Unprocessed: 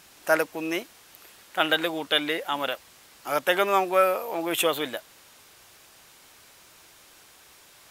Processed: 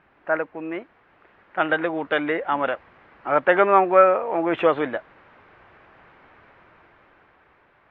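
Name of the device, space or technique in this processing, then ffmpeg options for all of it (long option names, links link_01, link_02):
action camera in a waterproof case: -af "lowpass=frequency=2000:width=0.5412,lowpass=frequency=2000:width=1.3066,dynaudnorm=framelen=410:gausssize=9:maxgain=14dB,volume=-1dB" -ar 44100 -c:a aac -b:a 64k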